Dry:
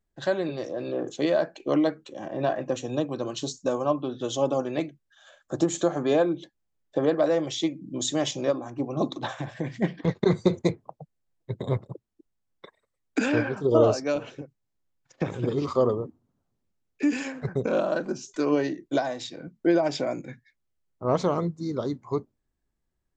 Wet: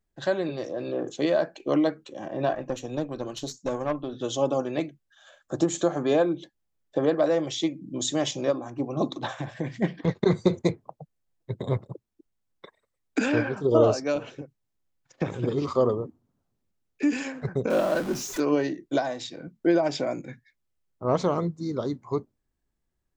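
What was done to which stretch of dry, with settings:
2.54–4.13 s: valve stage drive 19 dB, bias 0.6
17.70–18.40 s: jump at every zero crossing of -32 dBFS

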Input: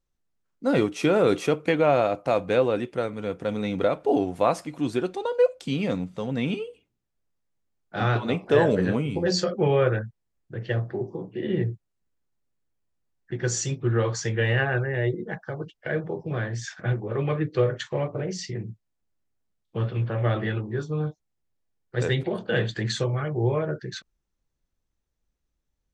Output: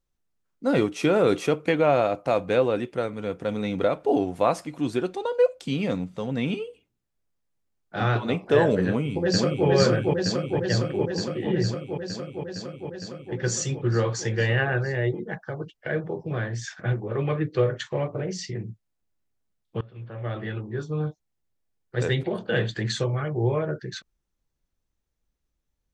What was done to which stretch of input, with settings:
8.87–9.67 s: echo throw 460 ms, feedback 80%, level -1 dB
19.81–21.01 s: fade in, from -23.5 dB

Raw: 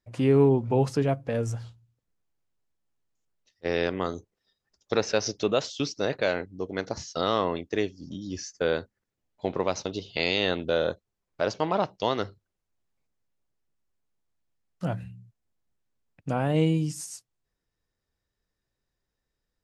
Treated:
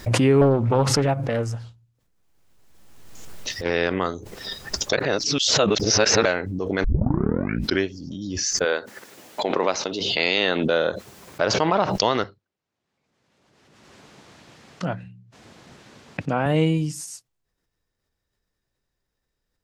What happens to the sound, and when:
0.41–3.70 s: loudspeaker Doppler distortion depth 0.5 ms
4.93–6.25 s: reverse
6.84 s: tape start 1.05 s
8.64–11.42 s: high-pass 390 Hz -> 110 Hz
12.24–16.46 s: band-pass 130–5200 Hz
whole clip: dynamic bell 1.6 kHz, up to +5 dB, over -41 dBFS, Q 0.77; swell ahead of each attack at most 28 dB/s; trim +2.5 dB

